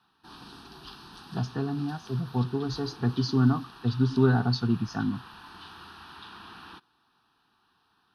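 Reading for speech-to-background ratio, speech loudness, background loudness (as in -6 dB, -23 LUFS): 19.0 dB, -27.5 LUFS, -46.5 LUFS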